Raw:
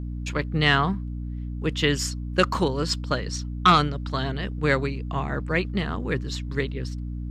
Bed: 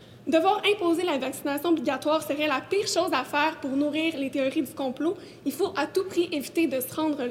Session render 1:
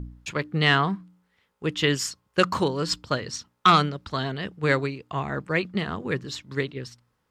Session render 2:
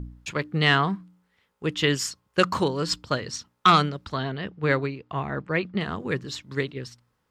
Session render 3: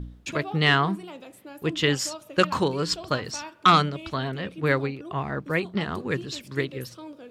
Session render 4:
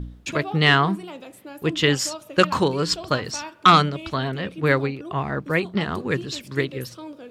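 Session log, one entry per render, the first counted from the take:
de-hum 60 Hz, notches 5
4.14–5.81 s: distance through air 140 m
add bed -15 dB
trim +3.5 dB

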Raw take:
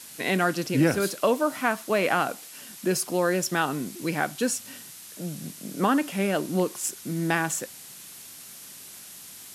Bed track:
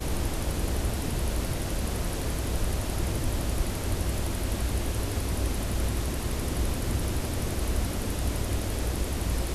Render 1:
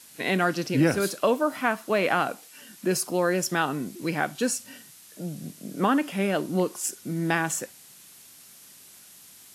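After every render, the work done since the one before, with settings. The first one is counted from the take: noise print and reduce 6 dB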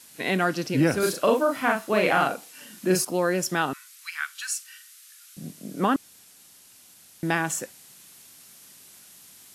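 0.99–3.05 s: doubling 38 ms -2 dB; 3.73–5.37 s: steep high-pass 1.2 kHz 48 dB/octave; 5.96–7.23 s: room tone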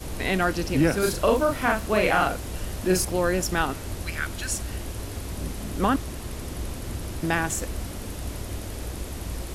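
add bed track -4.5 dB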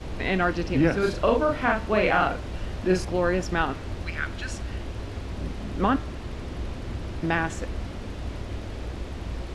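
low-pass 3.7 kHz 12 dB/octave; de-hum 149.9 Hz, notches 27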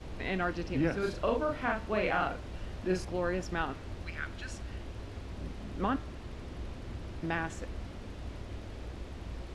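trim -8.5 dB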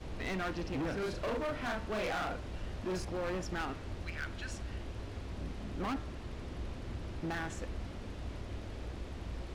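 overload inside the chain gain 32.5 dB

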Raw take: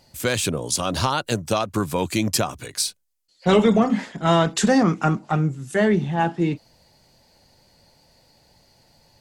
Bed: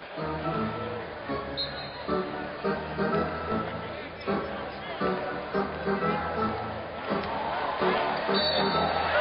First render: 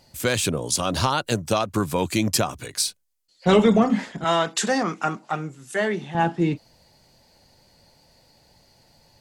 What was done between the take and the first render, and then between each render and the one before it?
4.24–6.15 s: high-pass 630 Hz 6 dB/octave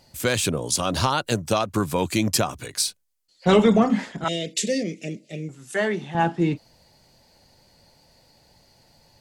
4.28–5.49 s: elliptic band-stop 560–2100 Hz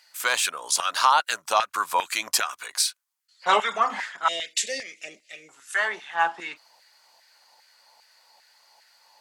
LFO high-pass saw down 2.5 Hz 850–1700 Hz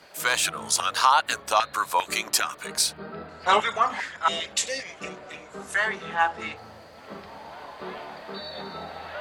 add bed -11.5 dB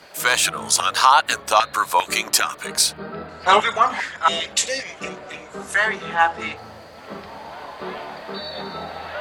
trim +5.5 dB; peak limiter -2 dBFS, peak gain reduction 1 dB

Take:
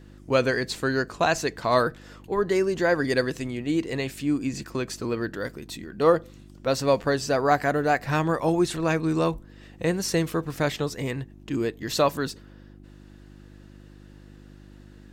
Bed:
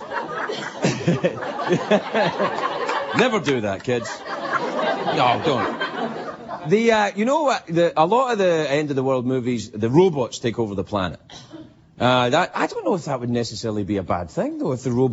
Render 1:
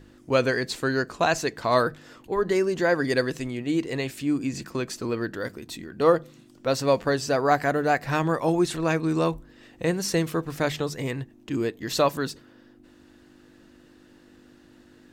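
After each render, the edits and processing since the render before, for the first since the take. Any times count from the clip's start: de-hum 50 Hz, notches 4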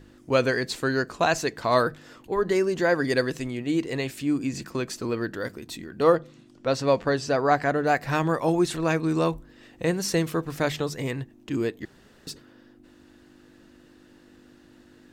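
6.15–7.87 s: distance through air 52 m; 11.85–12.27 s: room tone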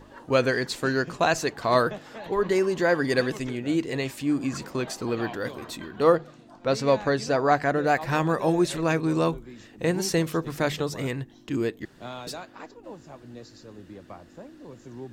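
add bed -21 dB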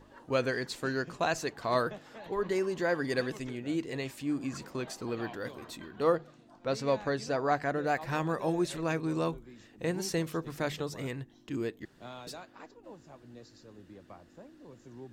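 trim -7.5 dB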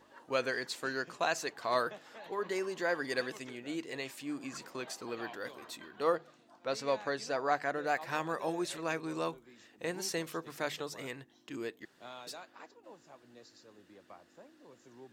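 high-pass 590 Hz 6 dB/octave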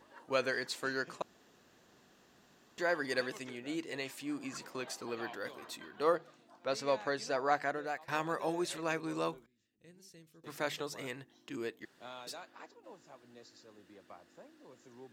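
1.22–2.78 s: room tone; 7.64–8.08 s: fade out linear, to -16.5 dB; 9.46–10.44 s: amplifier tone stack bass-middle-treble 10-0-1

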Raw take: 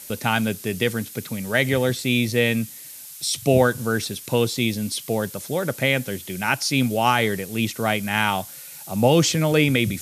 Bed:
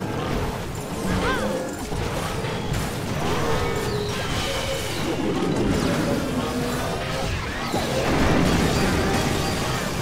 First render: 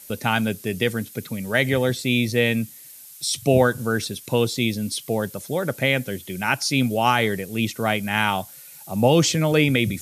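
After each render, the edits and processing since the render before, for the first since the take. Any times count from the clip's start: noise reduction 6 dB, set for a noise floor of -40 dBFS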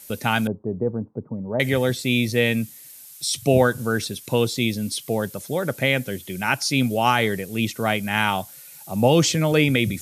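0.47–1.60 s: elliptic low-pass 1 kHz, stop band 80 dB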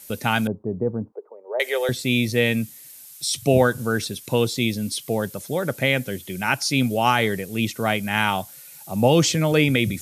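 1.12–1.89 s: Chebyshev high-pass 390 Hz, order 5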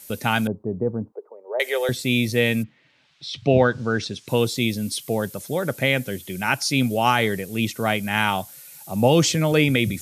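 2.62–4.27 s: low-pass 2.6 kHz -> 7 kHz 24 dB/octave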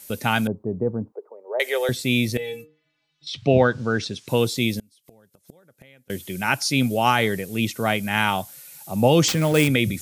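2.37–3.27 s: inharmonic resonator 150 Hz, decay 0.35 s, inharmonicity 0.008; 4.79–6.10 s: inverted gate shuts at -20 dBFS, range -31 dB; 9.28–9.68 s: sample-rate reducer 11 kHz, jitter 20%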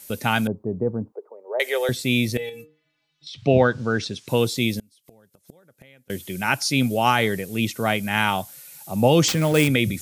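2.49–3.41 s: compression, threshold -34 dBFS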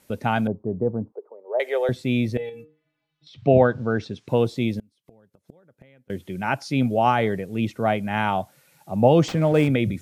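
low-pass 1.1 kHz 6 dB/octave; dynamic bell 680 Hz, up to +5 dB, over -37 dBFS, Q 2.4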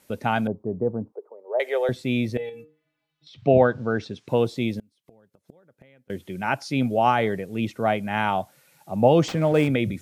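bass shelf 190 Hz -4.5 dB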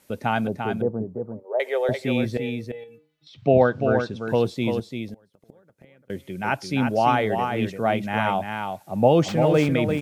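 delay 344 ms -6 dB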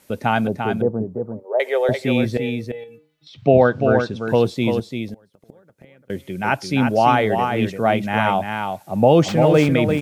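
trim +4.5 dB; peak limiter -3 dBFS, peak gain reduction 2.5 dB

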